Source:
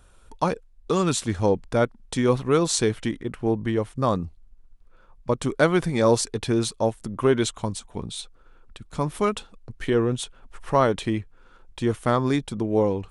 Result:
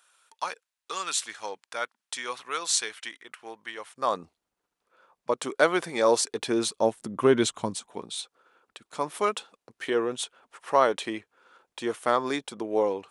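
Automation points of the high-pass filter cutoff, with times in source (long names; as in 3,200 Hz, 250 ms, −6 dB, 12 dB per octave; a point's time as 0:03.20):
0:03.75 1,300 Hz
0:04.25 450 Hz
0:06.08 450 Hz
0:07.53 150 Hz
0:08.11 450 Hz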